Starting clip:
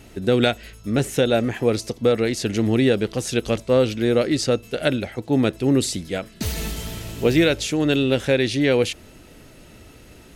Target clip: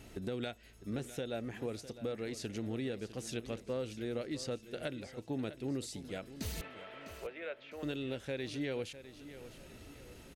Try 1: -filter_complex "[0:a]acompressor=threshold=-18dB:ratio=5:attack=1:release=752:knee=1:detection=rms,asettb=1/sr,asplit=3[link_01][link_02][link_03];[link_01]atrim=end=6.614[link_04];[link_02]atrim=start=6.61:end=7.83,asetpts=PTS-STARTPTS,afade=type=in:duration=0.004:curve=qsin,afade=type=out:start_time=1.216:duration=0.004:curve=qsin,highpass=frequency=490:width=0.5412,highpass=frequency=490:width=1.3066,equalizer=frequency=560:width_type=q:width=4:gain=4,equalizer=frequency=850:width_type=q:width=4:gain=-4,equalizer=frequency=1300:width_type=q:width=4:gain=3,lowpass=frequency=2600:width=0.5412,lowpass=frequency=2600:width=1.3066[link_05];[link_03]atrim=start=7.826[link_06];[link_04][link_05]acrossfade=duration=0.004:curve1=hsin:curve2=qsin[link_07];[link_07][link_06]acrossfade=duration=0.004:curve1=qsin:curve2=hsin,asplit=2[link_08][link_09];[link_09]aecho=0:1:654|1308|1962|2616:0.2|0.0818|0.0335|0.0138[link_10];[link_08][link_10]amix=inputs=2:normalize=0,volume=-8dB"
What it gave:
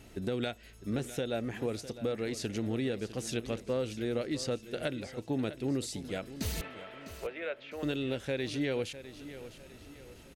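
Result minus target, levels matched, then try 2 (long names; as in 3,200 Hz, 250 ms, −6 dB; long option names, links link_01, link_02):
downward compressor: peak gain reduction −5 dB
-filter_complex "[0:a]acompressor=threshold=-24.5dB:ratio=5:attack=1:release=752:knee=1:detection=rms,asettb=1/sr,asplit=3[link_01][link_02][link_03];[link_01]atrim=end=6.614[link_04];[link_02]atrim=start=6.61:end=7.83,asetpts=PTS-STARTPTS,afade=type=in:duration=0.004:curve=qsin,afade=type=out:start_time=1.216:duration=0.004:curve=qsin,highpass=frequency=490:width=0.5412,highpass=frequency=490:width=1.3066,equalizer=frequency=560:width_type=q:width=4:gain=4,equalizer=frequency=850:width_type=q:width=4:gain=-4,equalizer=frequency=1300:width_type=q:width=4:gain=3,lowpass=frequency=2600:width=0.5412,lowpass=frequency=2600:width=1.3066[link_05];[link_03]atrim=start=7.826[link_06];[link_04][link_05]acrossfade=duration=0.004:curve1=hsin:curve2=qsin[link_07];[link_07][link_06]acrossfade=duration=0.004:curve1=qsin:curve2=hsin,asplit=2[link_08][link_09];[link_09]aecho=0:1:654|1308|1962|2616:0.2|0.0818|0.0335|0.0138[link_10];[link_08][link_10]amix=inputs=2:normalize=0,volume=-8dB"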